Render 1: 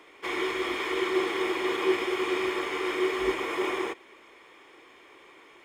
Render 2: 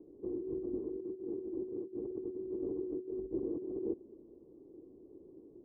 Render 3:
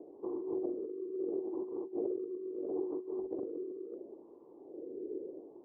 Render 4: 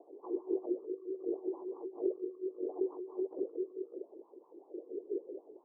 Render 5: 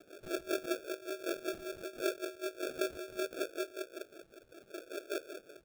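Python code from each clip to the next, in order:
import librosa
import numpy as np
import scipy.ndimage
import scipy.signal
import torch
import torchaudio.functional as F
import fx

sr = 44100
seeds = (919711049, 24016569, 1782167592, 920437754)

y1 = fx.over_compress(x, sr, threshold_db=-33.0, ratio=-0.5)
y1 = scipy.signal.sosfilt(scipy.signal.cheby2(4, 80, 2100.0, 'lowpass', fs=sr, output='sos'), y1)
y1 = y1 * librosa.db_to_amplitude(2.5)
y2 = fx.wah_lfo(y1, sr, hz=0.74, low_hz=420.0, high_hz=1000.0, q=3.4)
y2 = fx.over_compress(y2, sr, threshold_db=-52.0, ratio=-1.0)
y2 = y2 * librosa.db_to_amplitude(14.0)
y3 = fx.wah_lfo(y2, sr, hz=5.2, low_hz=360.0, high_hz=1100.0, q=3.8)
y3 = y3 * librosa.db_to_amplitude(6.5)
y4 = fx.sample_hold(y3, sr, seeds[0], rate_hz=1000.0, jitter_pct=0)
y4 = y4 * librosa.db_to_amplitude(-1.0)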